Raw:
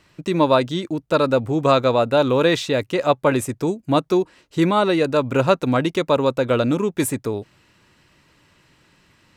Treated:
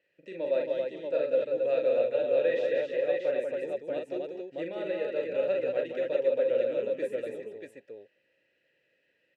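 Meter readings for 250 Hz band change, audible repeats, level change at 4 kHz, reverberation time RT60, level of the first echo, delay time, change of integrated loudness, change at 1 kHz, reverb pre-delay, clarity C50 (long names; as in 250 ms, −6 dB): −21.0 dB, 5, −20.5 dB, no reverb audible, −4.5 dB, 42 ms, −10.0 dB, −24.0 dB, no reverb audible, no reverb audible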